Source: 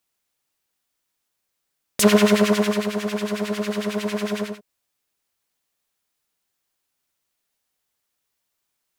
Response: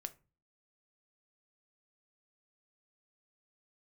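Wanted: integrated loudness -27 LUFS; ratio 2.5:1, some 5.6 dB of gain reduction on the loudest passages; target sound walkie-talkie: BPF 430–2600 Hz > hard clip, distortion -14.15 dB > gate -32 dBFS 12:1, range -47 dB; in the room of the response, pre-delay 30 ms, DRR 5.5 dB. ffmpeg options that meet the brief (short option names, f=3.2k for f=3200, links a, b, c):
-filter_complex "[0:a]acompressor=threshold=-19dB:ratio=2.5,asplit=2[a][b];[1:a]atrim=start_sample=2205,adelay=30[c];[b][c]afir=irnorm=-1:irlink=0,volume=-2dB[d];[a][d]amix=inputs=2:normalize=0,highpass=430,lowpass=2.6k,asoftclip=type=hard:threshold=-23dB,agate=range=-47dB:threshold=-32dB:ratio=12,volume=3dB"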